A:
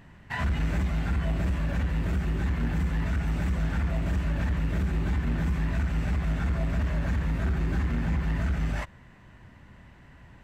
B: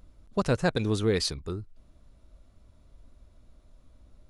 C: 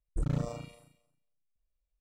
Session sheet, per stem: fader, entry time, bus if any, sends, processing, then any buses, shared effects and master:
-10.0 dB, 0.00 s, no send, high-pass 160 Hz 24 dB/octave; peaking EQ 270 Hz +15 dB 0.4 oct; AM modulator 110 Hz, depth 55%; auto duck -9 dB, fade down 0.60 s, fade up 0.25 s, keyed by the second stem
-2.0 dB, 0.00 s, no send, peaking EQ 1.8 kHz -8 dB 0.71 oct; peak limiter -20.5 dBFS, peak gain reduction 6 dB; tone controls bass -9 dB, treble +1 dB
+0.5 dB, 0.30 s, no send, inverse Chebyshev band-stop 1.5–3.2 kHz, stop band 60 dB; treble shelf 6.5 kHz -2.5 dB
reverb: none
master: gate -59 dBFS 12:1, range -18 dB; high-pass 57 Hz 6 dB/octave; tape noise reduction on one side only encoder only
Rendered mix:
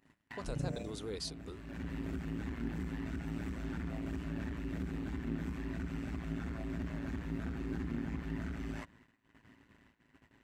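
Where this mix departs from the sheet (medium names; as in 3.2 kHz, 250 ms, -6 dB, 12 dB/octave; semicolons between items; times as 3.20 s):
stem A: missing high-pass 160 Hz 24 dB/octave; stem B -2.0 dB -> -11.0 dB; stem C +0.5 dB -> -6.0 dB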